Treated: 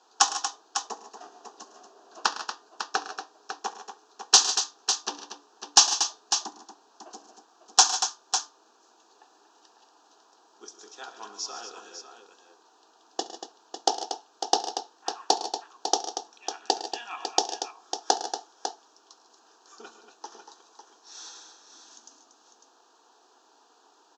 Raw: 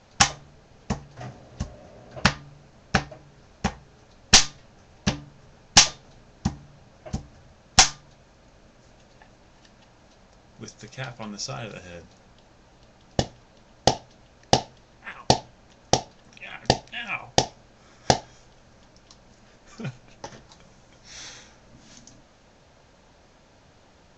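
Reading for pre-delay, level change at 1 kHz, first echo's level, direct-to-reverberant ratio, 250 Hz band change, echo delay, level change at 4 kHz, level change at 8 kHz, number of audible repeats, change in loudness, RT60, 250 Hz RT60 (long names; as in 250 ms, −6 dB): no reverb audible, −0.5 dB, −20.0 dB, no reverb audible, −12.5 dB, 68 ms, −2.0 dB, 0.0 dB, 5, −2.5 dB, no reverb audible, no reverb audible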